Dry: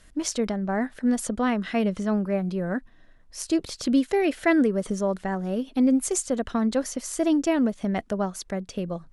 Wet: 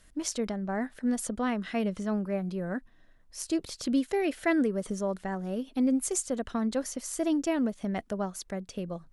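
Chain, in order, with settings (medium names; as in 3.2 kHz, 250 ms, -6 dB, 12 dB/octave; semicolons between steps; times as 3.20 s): treble shelf 10 kHz +6.5 dB; trim -5.5 dB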